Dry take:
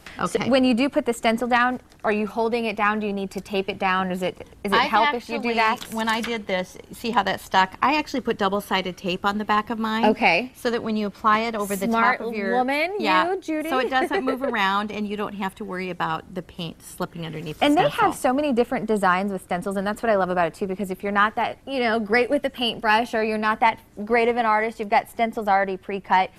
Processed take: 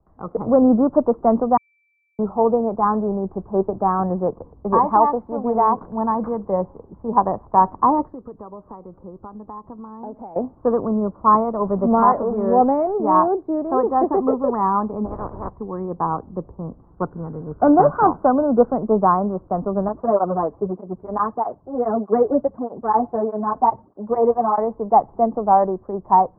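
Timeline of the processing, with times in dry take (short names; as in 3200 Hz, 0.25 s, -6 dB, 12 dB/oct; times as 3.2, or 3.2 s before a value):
1.57–2.19 bleep 2330 Hz -19 dBFS
8.04–10.36 compressor 3:1, threshold -36 dBFS
11.61–12.98 zero-crossing step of -30 dBFS
15.04–15.49 spectral limiter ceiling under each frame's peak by 28 dB
16.94–18.7 bell 1500 Hz +12.5 dB 0.29 oct
19.88–24.58 tape flanging out of phase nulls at 1.6 Hz, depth 6.1 ms
whole clip: elliptic low-pass 1100 Hz, stop band 60 dB; AGC gain up to 7 dB; three-band expander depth 40%; gain -1 dB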